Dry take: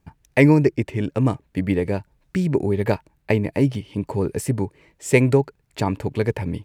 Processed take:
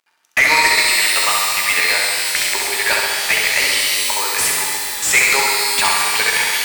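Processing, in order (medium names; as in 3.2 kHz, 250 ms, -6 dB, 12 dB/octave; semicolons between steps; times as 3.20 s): high-pass 1.2 kHz 12 dB/octave; gate -50 dBFS, range -24 dB; tilt EQ +4.5 dB/octave; crackle 77 per s -59 dBFS; in parallel at -6.5 dB: bit crusher 5-bit; on the sum: overdrive pedal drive 25 dB, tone 2.9 kHz, clips at -2 dBFS; on a send: flutter echo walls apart 11.4 m, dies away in 1.1 s; on the sum: pitch-shifted reverb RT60 2.6 s, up +12 st, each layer -2 dB, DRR 2.5 dB; trim -2.5 dB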